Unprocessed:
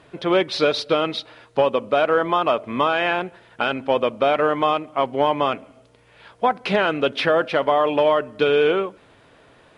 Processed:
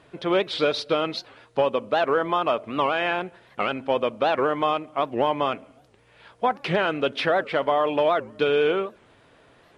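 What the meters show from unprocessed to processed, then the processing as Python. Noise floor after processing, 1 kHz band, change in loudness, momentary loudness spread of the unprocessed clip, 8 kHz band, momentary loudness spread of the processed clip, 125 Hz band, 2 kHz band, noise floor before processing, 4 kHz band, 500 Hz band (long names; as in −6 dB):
−57 dBFS, −3.0 dB, −3.5 dB, 6 LU, can't be measured, 6 LU, −2.5 dB, −3.5 dB, −53 dBFS, −3.5 dB, −3.5 dB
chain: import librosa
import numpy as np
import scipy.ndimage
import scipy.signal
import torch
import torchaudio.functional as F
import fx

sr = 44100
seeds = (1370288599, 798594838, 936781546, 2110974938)

y = fx.record_warp(x, sr, rpm=78.0, depth_cents=250.0)
y = y * 10.0 ** (-3.5 / 20.0)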